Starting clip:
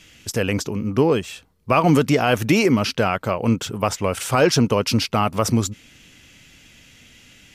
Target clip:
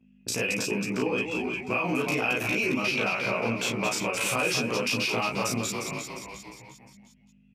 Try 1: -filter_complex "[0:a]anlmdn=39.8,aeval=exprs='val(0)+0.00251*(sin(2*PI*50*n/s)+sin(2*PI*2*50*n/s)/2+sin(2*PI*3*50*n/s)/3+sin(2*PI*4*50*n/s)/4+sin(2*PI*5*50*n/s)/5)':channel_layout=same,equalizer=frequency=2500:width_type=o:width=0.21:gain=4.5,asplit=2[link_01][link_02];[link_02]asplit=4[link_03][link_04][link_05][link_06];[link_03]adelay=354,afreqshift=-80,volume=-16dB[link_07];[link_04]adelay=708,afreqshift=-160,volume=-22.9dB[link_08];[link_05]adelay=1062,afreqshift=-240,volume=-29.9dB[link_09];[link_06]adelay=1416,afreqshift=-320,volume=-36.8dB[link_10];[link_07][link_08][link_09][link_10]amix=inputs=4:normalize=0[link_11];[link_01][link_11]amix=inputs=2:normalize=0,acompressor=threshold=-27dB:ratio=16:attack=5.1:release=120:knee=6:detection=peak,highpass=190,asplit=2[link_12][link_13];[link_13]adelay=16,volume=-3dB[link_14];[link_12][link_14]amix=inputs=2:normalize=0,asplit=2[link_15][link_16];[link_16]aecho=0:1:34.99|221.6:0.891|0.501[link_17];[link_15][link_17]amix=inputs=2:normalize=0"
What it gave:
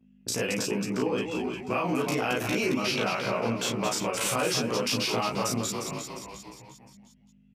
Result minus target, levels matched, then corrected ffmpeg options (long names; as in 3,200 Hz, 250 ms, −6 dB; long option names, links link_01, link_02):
2,000 Hz band −4.0 dB
-filter_complex "[0:a]anlmdn=39.8,aeval=exprs='val(0)+0.00251*(sin(2*PI*50*n/s)+sin(2*PI*2*50*n/s)/2+sin(2*PI*3*50*n/s)/3+sin(2*PI*4*50*n/s)/4+sin(2*PI*5*50*n/s)/5)':channel_layout=same,equalizer=frequency=2500:width_type=o:width=0.21:gain=16.5,asplit=2[link_01][link_02];[link_02]asplit=4[link_03][link_04][link_05][link_06];[link_03]adelay=354,afreqshift=-80,volume=-16dB[link_07];[link_04]adelay=708,afreqshift=-160,volume=-22.9dB[link_08];[link_05]adelay=1062,afreqshift=-240,volume=-29.9dB[link_09];[link_06]adelay=1416,afreqshift=-320,volume=-36.8dB[link_10];[link_07][link_08][link_09][link_10]amix=inputs=4:normalize=0[link_11];[link_01][link_11]amix=inputs=2:normalize=0,acompressor=threshold=-27dB:ratio=16:attack=5.1:release=120:knee=6:detection=peak,highpass=190,asplit=2[link_12][link_13];[link_13]adelay=16,volume=-3dB[link_14];[link_12][link_14]amix=inputs=2:normalize=0,asplit=2[link_15][link_16];[link_16]aecho=0:1:34.99|221.6:0.891|0.501[link_17];[link_15][link_17]amix=inputs=2:normalize=0"